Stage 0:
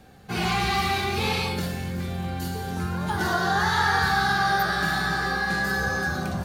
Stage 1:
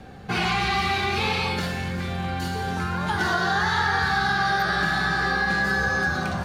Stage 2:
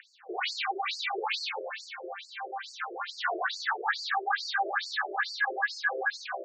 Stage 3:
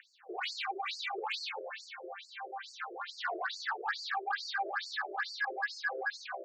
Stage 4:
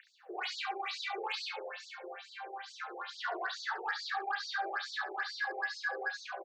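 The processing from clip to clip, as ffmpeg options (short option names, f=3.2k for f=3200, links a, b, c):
-filter_complex "[0:a]aemphasis=mode=reproduction:type=50fm,acrossover=split=790|1600[a][b][c];[a]acompressor=threshold=-36dB:ratio=4[d];[b]acompressor=threshold=-38dB:ratio=4[e];[c]acompressor=threshold=-34dB:ratio=4[f];[d][e][f]amix=inputs=3:normalize=0,volume=8dB"
-af "acompressor=mode=upward:threshold=-38dB:ratio=2.5,afftfilt=real='re*between(b*sr/1024,460*pow(6100/460,0.5+0.5*sin(2*PI*2.3*pts/sr))/1.41,460*pow(6100/460,0.5+0.5*sin(2*PI*2.3*pts/sr))*1.41)':imag='im*between(b*sr/1024,460*pow(6100/460,0.5+0.5*sin(2*PI*2.3*pts/sr))/1.41,460*pow(6100/460,0.5+0.5*sin(2*PI*2.3*pts/sr))*1.41)':win_size=1024:overlap=0.75"
-af "asoftclip=type=tanh:threshold=-17.5dB,volume=-5dB"
-af "aecho=1:1:31|69:0.316|0.316,volume=-1.5dB"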